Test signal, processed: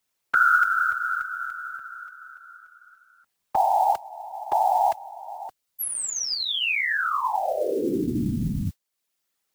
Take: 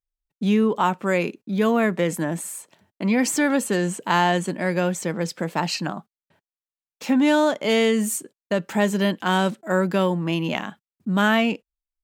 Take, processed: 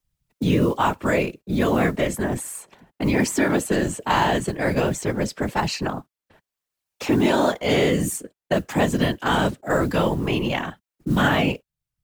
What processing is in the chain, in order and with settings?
whisper effect; modulation noise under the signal 32 dB; three bands compressed up and down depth 40%

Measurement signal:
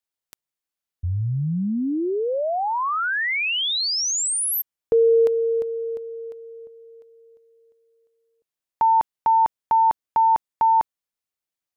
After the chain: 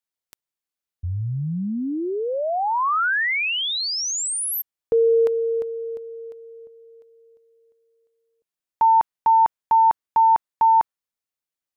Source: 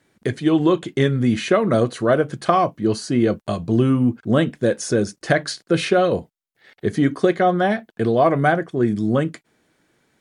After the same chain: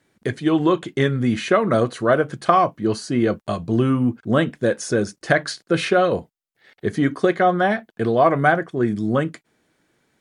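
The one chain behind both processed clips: dynamic bell 1.3 kHz, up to +5 dB, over -31 dBFS, Q 0.76; trim -2 dB

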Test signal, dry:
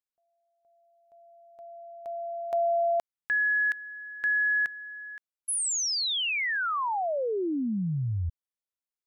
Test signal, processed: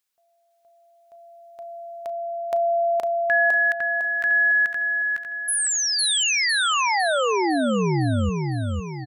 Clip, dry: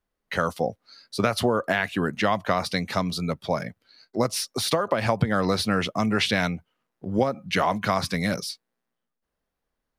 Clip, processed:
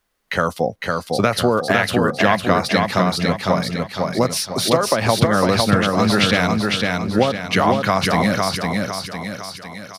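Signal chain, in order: on a send: feedback delay 505 ms, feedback 44%, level -3 dB; on the sum: tape noise reduction on one side only encoder only; trim +5.5 dB

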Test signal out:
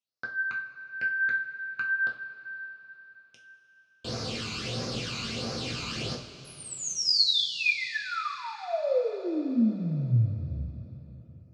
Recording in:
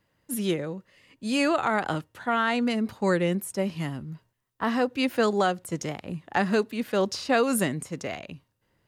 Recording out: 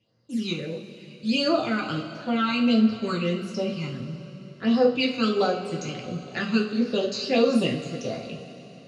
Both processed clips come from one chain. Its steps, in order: phase shifter stages 12, 1.5 Hz, lowest notch 550–3100 Hz; cabinet simulation 120–6200 Hz, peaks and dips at 130 Hz +5 dB, 290 Hz -5 dB, 900 Hz -10 dB, 1.8 kHz -8 dB, 2.8 kHz +5 dB, 4.4 kHz +6 dB; two-slope reverb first 0.35 s, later 4.1 s, from -18 dB, DRR -2.5 dB

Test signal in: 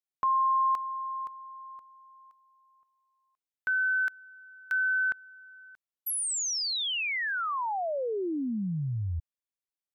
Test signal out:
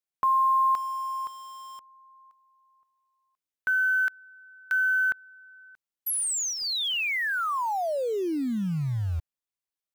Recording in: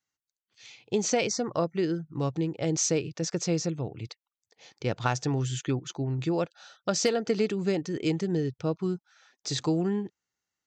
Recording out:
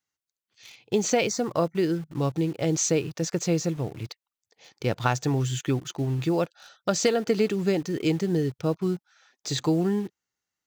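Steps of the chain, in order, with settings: dynamic bell 5.3 kHz, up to -6 dB, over -49 dBFS, Q 4.6; in parallel at -7.5 dB: bit crusher 7-bit

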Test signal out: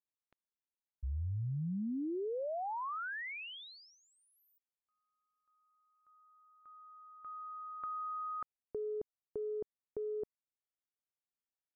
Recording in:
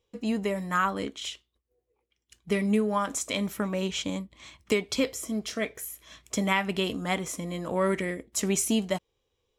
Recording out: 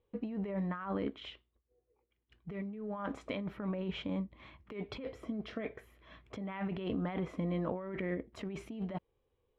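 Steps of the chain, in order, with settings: treble shelf 3.2 kHz -8 dB; compressor with a negative ratio -33 dBFS, ratio -1; distance through air 400 m; trim -3.5 dB

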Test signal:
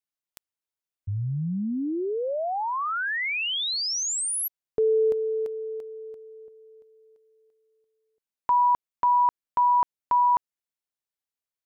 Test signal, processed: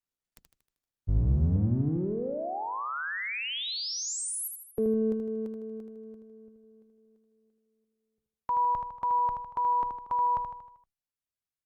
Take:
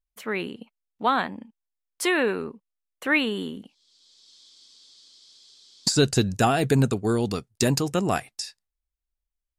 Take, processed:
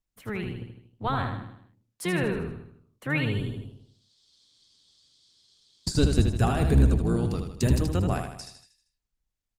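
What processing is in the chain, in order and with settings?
octave divider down 1 oct, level +3 dB; bass shelf 180 Hz +7 dB; on a send: feedback delay 78 ms, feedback 50%, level -6 dB; on the sum: trim -7.5 dB; Opus 32 kbps 48 kHz

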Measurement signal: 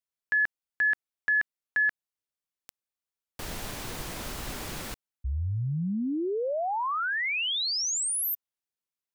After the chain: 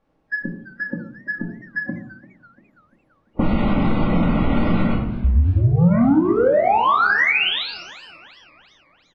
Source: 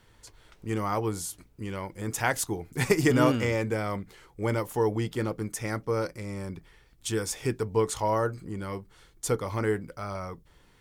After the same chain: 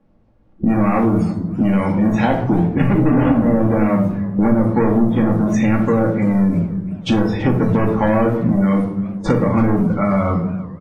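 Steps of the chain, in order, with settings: hum notches 50/100 Hz; low-pass that closes with the level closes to 980 Hz, closed at -23 dBFS; peaking EQ 210 Hz +14.5 dB 0.58 oct; added noise blue -39 dBFS; waveshaping leveller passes 5; spectral noise reduction 28 dB; level-controlled noise filter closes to 470 Hz, open at -7.5 dBFS; speakerphone echo 100 ms, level -18 dB; simulated room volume 620 m³, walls furnished, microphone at 2.3 m; compression 3:1, threshold -25 dBFS; peaking EQ 7.3 kHz -3 dB 0.26 oct; modulated delay 339 ms, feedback 48%, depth 175 cents, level -19 dB; trim +7 dB

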